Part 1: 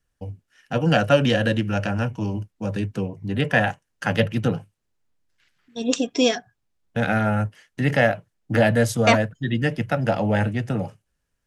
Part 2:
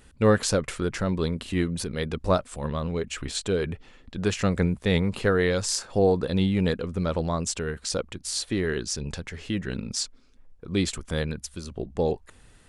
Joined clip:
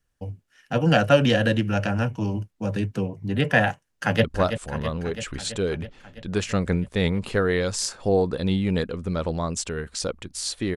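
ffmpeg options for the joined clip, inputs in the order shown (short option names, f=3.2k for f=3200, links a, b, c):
-filter_complex "[0:a]apad=whole_dur=10.76,atrim=end=10.76,atrim=end=4.242[a];[1:a]atrim=start=2.138:end=8.66[b];[a][b]acrossfade=d=0.004:c1=hsin:c2=hsin,asplit=2[c][d];[d]afade=t=in:st=3.89:d=0.01,afade=t=out:st=4.24:d=0.01,aecho=0:1:330|660|990|1320|1650|1980|2310|2640|2970|3300|3630:0.354813|0.248369|0.173859|0.121701|0.0851907|0.0596335|0.0417434|0.0292204|0.0204543|0.014318|0.0100226[e];[c][e]amix=inputs=2:normalize=0"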